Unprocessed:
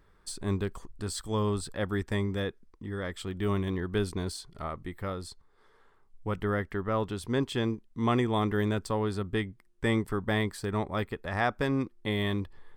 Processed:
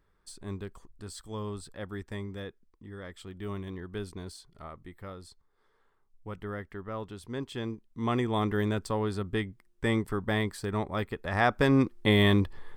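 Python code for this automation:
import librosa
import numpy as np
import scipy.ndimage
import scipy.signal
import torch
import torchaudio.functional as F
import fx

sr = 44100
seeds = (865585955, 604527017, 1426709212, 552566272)

y = fx.gain(x, sr, db=fx.line((7.32, -8.0), (8.42, -0.5), (11.07, -0.5), (11.91, 7.5)))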